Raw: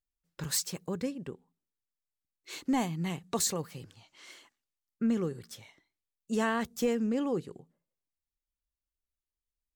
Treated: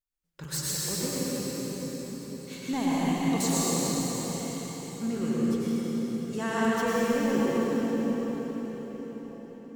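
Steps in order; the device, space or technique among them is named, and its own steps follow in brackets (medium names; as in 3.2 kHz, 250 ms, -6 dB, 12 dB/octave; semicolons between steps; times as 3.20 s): cathedral (reverberation RT60 5.8 s, pre-delay 87 ms, DRR -8.5 dB); trim -3.5 dB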